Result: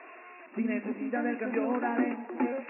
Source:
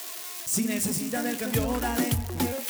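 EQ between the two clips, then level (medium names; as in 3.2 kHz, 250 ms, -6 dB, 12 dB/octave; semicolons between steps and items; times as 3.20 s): brick-wall FIR band-pass 210–2800 Hz; distance through air 220 m; 0.0 dB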